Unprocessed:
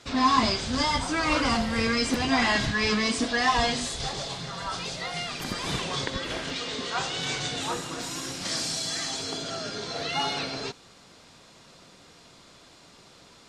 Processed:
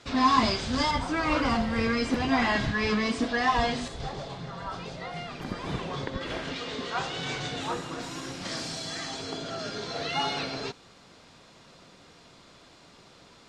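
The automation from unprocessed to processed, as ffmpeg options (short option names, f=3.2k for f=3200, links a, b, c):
-af "asetnsamples=n=441:p=0,asendcmd='0.91 lowpass f 2100;3.88 lowpass f 1100;6.21 lowpass f 2500;9.59 lowpass f 4600',lowpass=f=5k:p=1"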